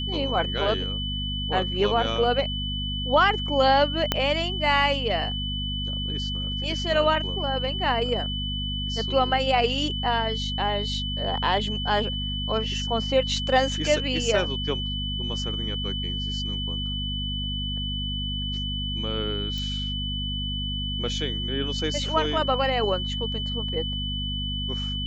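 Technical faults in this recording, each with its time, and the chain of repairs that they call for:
mains hum 50 Hz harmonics 5 −31 dBFS
whistle 3,000 Hz −30 dBFS
0:04.12: click −6 dBFS
0:19.58: click −21 dBFS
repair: click removal
hum removal 50 Hz, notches 5
notch filter 3,000 Hz, Q 30

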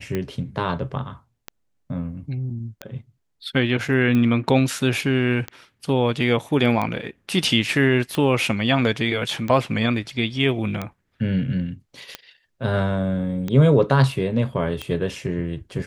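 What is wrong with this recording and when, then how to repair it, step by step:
scratch tick 45 rpm −13 dBFS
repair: click removal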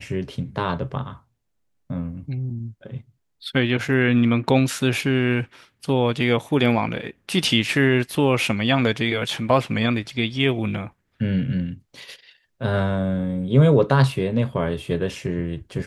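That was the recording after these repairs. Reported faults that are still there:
none of them is left

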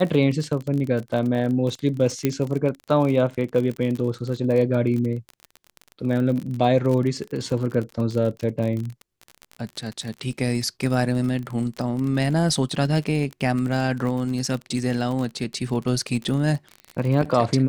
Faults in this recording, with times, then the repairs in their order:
surface crackle 36 per second −27 dBFS
0:02.25: click −7 dBFS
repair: click removal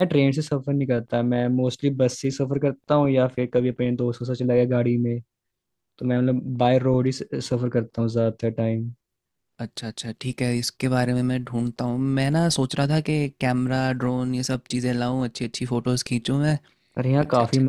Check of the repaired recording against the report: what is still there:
0:02.25: click

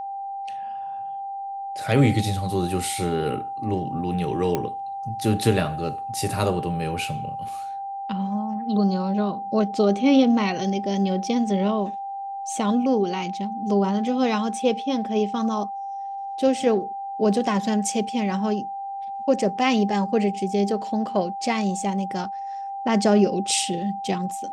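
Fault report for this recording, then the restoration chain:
whistle 790 Hz −29 dBFS
0:04.55: click −10 dBFS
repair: click removal
notch filter 790 Hz, Q 30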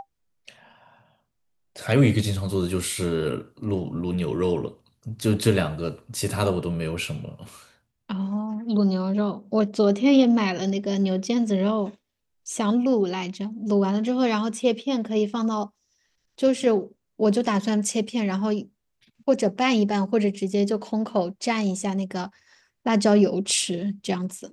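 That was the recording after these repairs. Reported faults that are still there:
none of them is left

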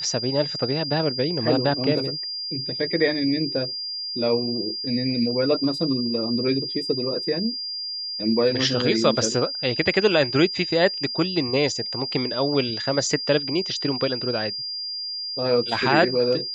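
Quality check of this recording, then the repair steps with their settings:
whistle 4,800 Hz −28 dBFS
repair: notch filter 4,800 Hz, Q 30

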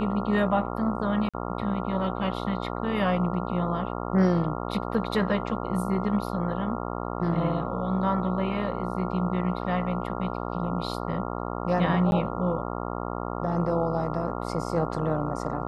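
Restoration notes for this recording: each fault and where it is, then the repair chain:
mains buzz 60 Hz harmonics 23 −32 dBFS
0:01.29–0:01.34: drop-out 46 ms
0:12.11–0:12.12: drop-out 11 ms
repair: hum removal 60 Hz, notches 23
repair the gap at 0:01.29, 46 ms
repair the gap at 0:12.11, 11 ms

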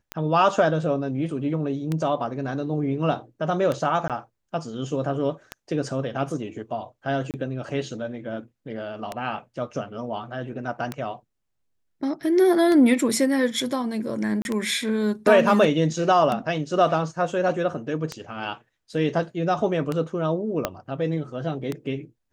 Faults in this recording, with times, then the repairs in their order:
scratch tick 33 1/3 rpm −13 dBFS
0:04.08–0:04.10: drop-out 17 ms
0:07.31–0:07.34: drop-out 28 ms
0:14.42–0:14.45: drop-out 31 ms
0:20.65: click −8 dBFS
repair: click removal
repair the gap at 0:04.08, 17 ms
repair the gap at 0:07.31, 28 ms
repair the gap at 0:14.42, 31 ms

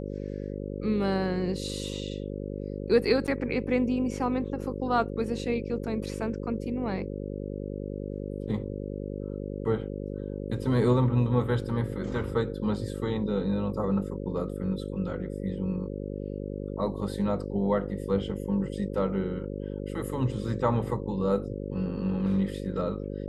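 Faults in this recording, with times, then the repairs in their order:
mains buzz 50 Hz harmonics 11 −35 dBFS
0:03.27–0:03.28: drop-out 8.1 ms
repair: hum removal 50 Hz, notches 11
repair the gap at 0:03.27, 8.1 ms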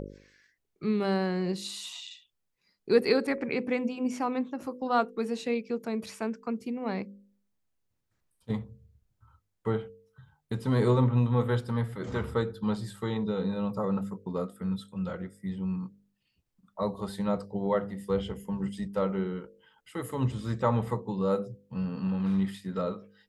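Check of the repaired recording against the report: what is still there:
none of them is left

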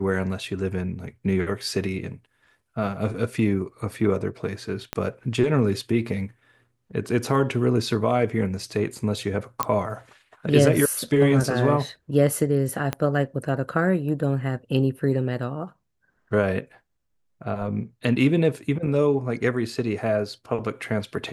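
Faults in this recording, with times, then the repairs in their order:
0:04.93: click −12 dBFS
0:09.63: click −6 dBFS
0:12.93: click −11 dBFS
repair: click removal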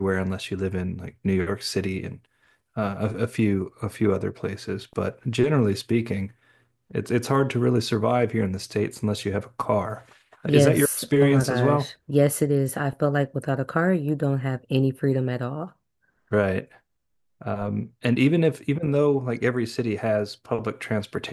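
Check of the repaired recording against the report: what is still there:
0:04.93: click
0:12.93: click

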